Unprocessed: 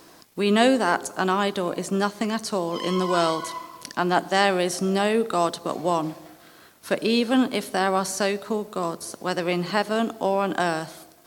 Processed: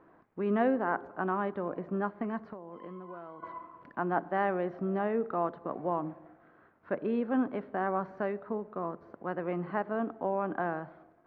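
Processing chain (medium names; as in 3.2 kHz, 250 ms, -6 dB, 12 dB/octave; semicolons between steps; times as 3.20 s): low-pass 1.7 kHz 24 dB/octave; 2.38–3.43 s: compression 16:1, threshold -32 dBFS, peak gain reduction 16.5 dB; trim -8.5 dB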